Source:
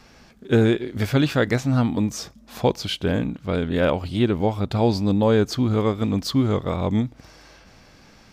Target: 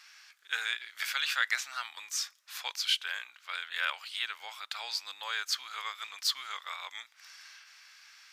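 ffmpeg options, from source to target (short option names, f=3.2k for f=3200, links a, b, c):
-af "highpass=f=1.4k:w=0.5412,highpass=f=1.4k:w=1.3066"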